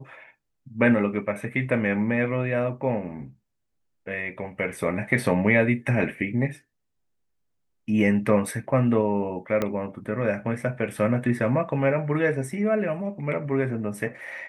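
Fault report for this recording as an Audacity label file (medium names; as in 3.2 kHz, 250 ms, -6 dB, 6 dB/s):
9.620000	9.620000	pop -12 dBFS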